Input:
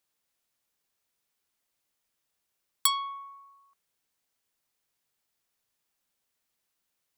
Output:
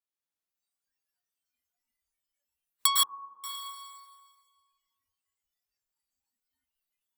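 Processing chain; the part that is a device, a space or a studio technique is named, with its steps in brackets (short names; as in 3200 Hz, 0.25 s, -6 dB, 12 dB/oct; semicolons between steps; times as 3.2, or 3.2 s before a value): stairwell (reverb RT60 1.8 s, pre-delay 0.102 s, DRR -5.5 dB); spectral noise reduction 19 dB; 3.03–3.44 elliptic low-pass 920 Hz, stop band 60 dB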